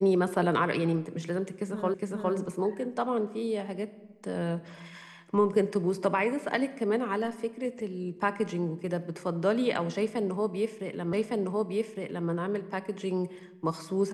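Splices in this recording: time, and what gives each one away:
1.94 repeat of the last 0.41 s
11.13 repeat of the last 1.16 s

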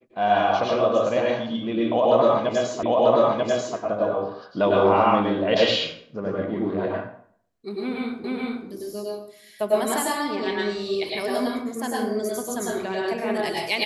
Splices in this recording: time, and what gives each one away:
2.83 repeat of the last 0.94 s
8.24 repeat of the last 0.43 s

